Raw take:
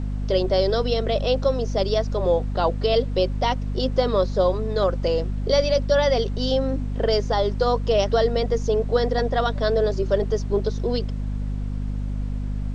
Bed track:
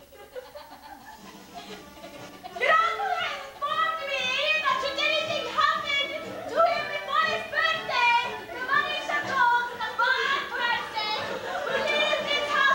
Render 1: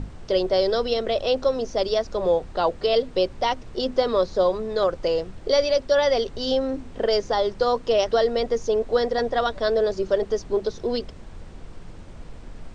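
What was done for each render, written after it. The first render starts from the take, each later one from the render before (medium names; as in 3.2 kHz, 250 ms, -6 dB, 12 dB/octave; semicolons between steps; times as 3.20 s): hum notches 50/100/150/200/250 Hz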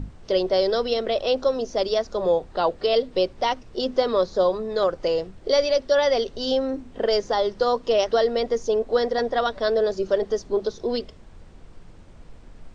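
noise print and reduce 6 dB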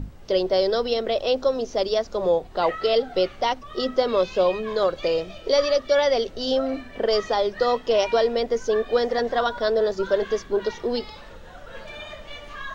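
add bed track -14 dB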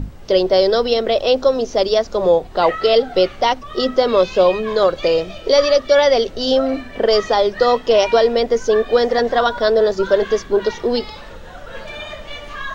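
trim +7 dB; peak limiter -3 dBFS, peak gain reduction 1.5 dB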